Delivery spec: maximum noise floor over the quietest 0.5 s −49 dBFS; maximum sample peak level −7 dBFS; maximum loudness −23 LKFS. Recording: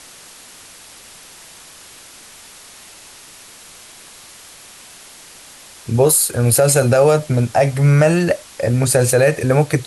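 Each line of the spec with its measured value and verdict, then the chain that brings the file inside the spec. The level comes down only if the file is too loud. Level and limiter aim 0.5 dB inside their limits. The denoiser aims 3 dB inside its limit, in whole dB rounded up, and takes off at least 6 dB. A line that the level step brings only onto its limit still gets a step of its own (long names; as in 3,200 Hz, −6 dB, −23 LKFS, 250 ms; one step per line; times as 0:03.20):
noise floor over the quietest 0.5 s −41 dBFS: out of spec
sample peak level −4.0 dBFS: out of spec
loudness −14.5 LKFS: out of spec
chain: level −9 dB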